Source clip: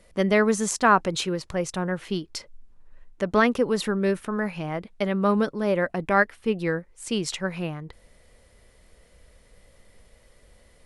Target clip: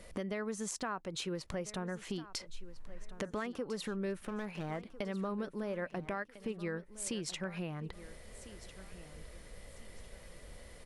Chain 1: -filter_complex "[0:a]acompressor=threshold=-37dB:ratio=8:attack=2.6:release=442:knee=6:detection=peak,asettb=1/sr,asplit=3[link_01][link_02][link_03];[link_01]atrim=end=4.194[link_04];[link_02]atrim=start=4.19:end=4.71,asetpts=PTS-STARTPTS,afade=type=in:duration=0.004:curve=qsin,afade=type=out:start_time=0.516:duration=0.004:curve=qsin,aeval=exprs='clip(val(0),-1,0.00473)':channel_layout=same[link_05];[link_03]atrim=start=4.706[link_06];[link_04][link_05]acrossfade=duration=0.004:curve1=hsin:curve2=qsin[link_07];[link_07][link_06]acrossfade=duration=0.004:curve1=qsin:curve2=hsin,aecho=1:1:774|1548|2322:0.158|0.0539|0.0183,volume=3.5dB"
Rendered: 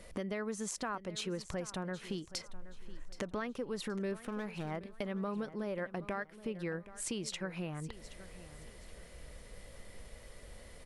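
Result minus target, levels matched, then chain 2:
echo 576 ms early
-filter_complex "[0:a]acompressor=threshold=-37dB:ratio=8:attack=2.6:release=442:knee=6:detection=peak,asettb=1/sr,asplit=3[link_01][link_02][link_03];[link_01]atrim=end=4.194[link_04];[link_02]atrim=start=4.19:end=4.71,asetpts=PTS-STARTPTS,afade=type=in:duration=0.004:curve=qsin,afade=type=out:start_time=0.516:duration=0.004:curve=qsin,aeval=exprs='clip(val(0),-1,0.00473)':channel_layout=same[link_05];[link_03]atrim=start=4.706[link_06];[link_04][link_05]acrossfade=duration=0.004:curve1=hsin:curve2=qsin[link_07];[link_07][link_06]acrossfade=duration=0.004:curve1=qsin:curve2=hsin,aecho=1:1:1350|2700|4050:0.158|0.0539|0.0183,volume=3.5dB"

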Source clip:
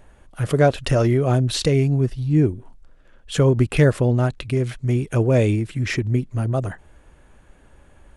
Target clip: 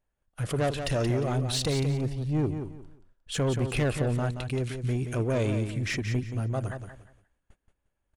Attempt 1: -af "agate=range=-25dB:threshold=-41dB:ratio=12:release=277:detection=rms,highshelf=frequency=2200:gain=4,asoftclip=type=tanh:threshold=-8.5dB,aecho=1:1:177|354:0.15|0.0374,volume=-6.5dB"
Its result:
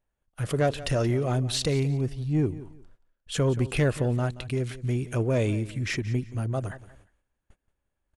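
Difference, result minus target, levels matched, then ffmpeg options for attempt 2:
echo-to-direct −8.5 dB; soft clipping: distortion −8 dB
-af "agate=range=-25dB:threshold=-41dB:ratio=12:release=277:detection=rms,highshelf=frequency=2200:gain=4,asoftclip=type=tanh:threshold=-15dB,aecho=1:1:177|354|531:0.398|0.0995|0.0249,volume=-6.5dB"

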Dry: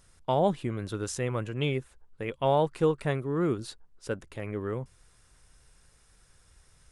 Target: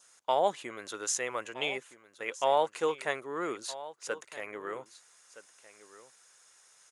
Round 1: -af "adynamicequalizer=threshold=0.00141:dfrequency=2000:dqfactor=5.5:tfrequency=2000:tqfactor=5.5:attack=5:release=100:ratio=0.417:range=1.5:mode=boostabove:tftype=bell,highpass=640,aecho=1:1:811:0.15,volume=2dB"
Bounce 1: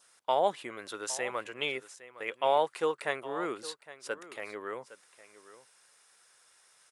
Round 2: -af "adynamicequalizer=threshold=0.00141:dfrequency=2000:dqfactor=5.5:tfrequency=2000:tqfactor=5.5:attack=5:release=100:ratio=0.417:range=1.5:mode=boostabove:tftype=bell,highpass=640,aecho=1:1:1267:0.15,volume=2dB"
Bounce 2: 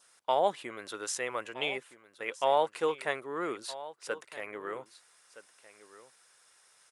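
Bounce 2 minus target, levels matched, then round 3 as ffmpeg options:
8,000 Hz band −4.5 dB
-af "adynamicequalizer=threshold=0.00141:dfrequency=2000:dqfactor=5.5:tfrequency=2000:tqfactor=5.5:attack=5:release=100:ratio=0.417:range=1.5:mode=boostabove:tftype=bell,highpass=640,equalizer=frequency=6600:width=4.7:gain=10,aecho=1:1:1267:0.15,volume=2dB"

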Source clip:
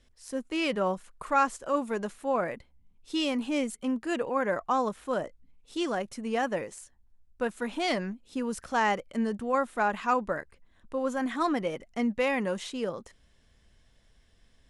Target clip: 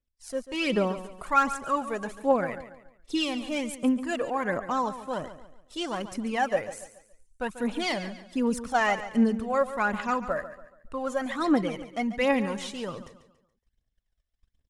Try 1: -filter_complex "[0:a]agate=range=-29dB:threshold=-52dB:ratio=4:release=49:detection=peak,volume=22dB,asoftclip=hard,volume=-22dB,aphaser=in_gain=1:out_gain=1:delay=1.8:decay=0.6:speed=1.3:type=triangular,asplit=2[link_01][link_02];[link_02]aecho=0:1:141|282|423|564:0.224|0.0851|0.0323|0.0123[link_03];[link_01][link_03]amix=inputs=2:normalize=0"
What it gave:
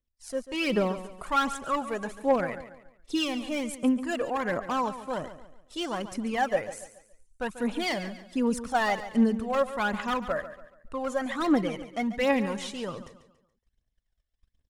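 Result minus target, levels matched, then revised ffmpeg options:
gain into a clipping stage and back: distortion +21 dB
-filter_complex "[0:a]agate=range=-29dB:threshold=-52dB:ratio=4:release=49:detection=peak,volume=15dB,asoftclip=hard,volume=-15dB,aphaser=in_gain=1:out_gain=1:delay=1.8:decay=0.6:speed=1.3:type=triangular,asplit=2[link_01][link_02];[link_02]aecho=0:1:141|282|423|564:0.224|0.0851|0.0323|0.0123[link_03];[link_01][link_03]amix=inputs=2:normalize=0"

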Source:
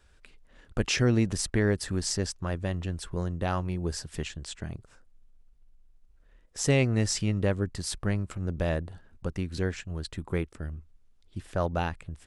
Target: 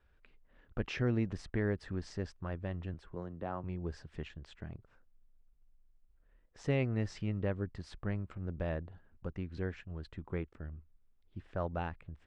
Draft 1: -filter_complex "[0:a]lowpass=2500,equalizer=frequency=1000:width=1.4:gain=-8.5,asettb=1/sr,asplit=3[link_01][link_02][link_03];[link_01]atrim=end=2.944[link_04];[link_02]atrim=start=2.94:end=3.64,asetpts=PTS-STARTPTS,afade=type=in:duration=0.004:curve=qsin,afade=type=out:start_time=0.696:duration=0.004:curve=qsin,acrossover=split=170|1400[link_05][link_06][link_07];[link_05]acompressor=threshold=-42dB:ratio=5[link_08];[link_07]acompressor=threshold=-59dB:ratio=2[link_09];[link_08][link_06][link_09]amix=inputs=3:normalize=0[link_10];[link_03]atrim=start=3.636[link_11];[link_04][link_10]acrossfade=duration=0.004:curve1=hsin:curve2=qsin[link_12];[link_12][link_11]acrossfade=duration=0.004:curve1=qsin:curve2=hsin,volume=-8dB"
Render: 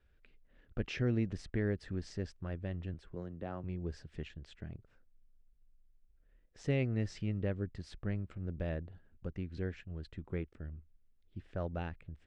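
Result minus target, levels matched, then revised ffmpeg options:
1,000 Hz band −5.0 dB
-filter_complex "[0:a]lowpass=2500,asettb=1/sr,asplit=3[link_01][link_02][link_03];[link_01]atrim=end=2.944[link_04];[link_02]atrim=start=2.94:end=3.64,asetpts=PTS-STARTPTS,afade=type=in:duration=0.004:curve=qsin,afade=type=out:start_time=0.696:duration=0.004:curve=qsin,acrossover=split=170|1400[link_05][link_06][link_07];[link_05]acompressor=threshold=-42dB:ratio=5[link_08];[link_07]acompressor=threshold=-59dB:ratio=2[link_09];[link_08][link_06][link_09]amix=inputs=3:normalize=0[link_10];[link_03]atrim=start=3.636[link_11];[link_04][link_10]acrossfade=duration=0.004:curve1=hsin:curve2=qsin[link_12];[link_12][link_11]acrossfade=duration=0.004:curve1=qsin:curve2=hsin,volume=-8dB"

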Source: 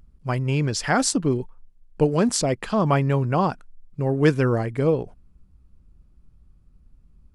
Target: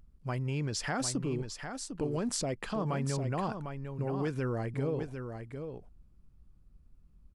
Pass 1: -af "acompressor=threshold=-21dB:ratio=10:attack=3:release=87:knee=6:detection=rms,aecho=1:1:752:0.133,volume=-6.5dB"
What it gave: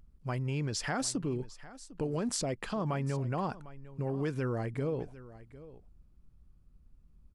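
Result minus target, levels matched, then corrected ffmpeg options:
echo-to-direct −10 dB
-af "acompressor=threshold=-21dB:ratio=10:attack=3:release=87:knee=6:detection=rms,aecho=1:1:752:0.422,volume=-6.5dB"

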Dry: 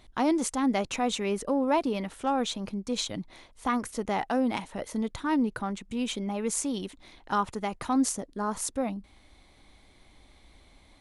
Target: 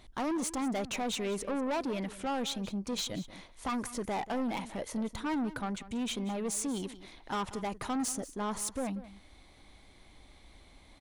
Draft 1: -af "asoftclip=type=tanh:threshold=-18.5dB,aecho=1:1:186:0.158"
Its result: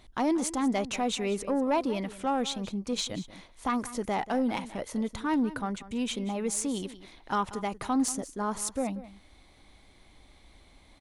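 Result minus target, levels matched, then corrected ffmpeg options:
soft clipping: distortion −12 dB
-af "asoftclip=type=tanh:threshold=-29.5dB,aecho=1:1:186:0.158"

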